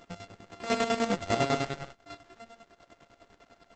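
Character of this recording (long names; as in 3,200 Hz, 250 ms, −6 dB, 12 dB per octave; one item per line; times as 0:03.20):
a buzz of ramps at a fixed pitch in blocks of 64 samples
chopped level 10 Hz, depth 65%, duty 45%
Opus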